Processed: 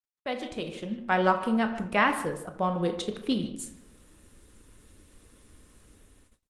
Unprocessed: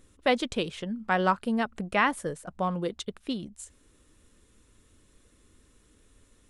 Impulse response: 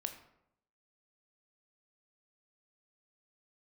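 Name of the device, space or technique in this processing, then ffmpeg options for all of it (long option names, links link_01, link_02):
speakerphone in a meeting room: -filter_complex "[1:a]atrim=start_sample=2205[link_01];[0:a][link_01]afir=irnorm=-1:irlink=0,asplit=2[link_02][link_03];[link_03]adelay=150,highpass=300,lowpass=3400,asoftclip=type=hard:threshold=-20.5dB,volume=-13dB[link_04];[link_02][link_04]amix=inputs=2:normalize=0,dynaudnorm=framelen=290:gausssize=5:maxgain=16dB,agate=range=-39dB:threshold=-50dB:ratio=16:detection=peak,volume=-8dB" -ar 48000 -c:a libopus -b:a 24k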